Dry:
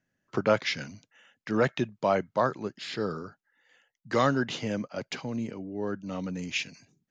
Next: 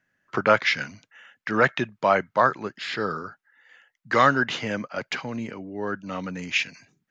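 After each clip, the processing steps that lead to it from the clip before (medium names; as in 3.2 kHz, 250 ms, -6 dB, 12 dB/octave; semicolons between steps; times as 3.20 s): peaking EQ 1.6 kHz +11 dB 2 oct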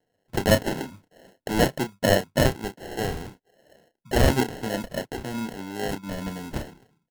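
low-pass 1.8 kHz 12 dB/octave; sample-and-hold 37×; doubling 31 ms -9.5 dB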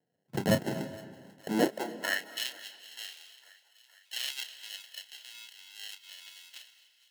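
high-pass sweep 150 Hz -> 3.1 kHz, 1.44–2.33 s; thinning echo 462 ms, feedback 73%, high-pass 740 Hz, level -21 dB; on a send at -14 dB: reverberation RT60 1.5 s, pre-delay 172 ms; on the sum: trim -8.5 dB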